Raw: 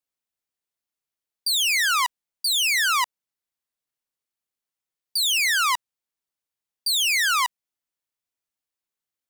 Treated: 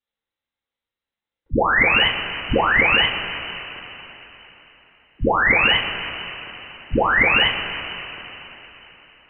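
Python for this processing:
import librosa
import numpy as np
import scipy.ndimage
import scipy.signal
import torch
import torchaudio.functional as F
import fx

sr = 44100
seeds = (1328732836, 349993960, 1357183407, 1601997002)

y = fx.rev_double_slope(x, sr, seeds[0], early_s=0.24, late_s=3.7, knee_db=-18, drr_db=-6.5)
y = fx.freq_invert(y, sr, carrier_hz=4000)
y = y * librosa.db_to_amplitude(-1.0)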